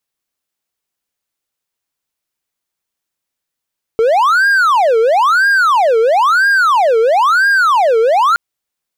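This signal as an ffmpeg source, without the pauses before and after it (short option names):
-f lavfi -i "aevalsrc='0.501*(1-4*abs(mod((1032*t-588/(2*PI*1)*sin(2*PI*1*t))+0.25,1)-0.5))':d=4.37:s=44100"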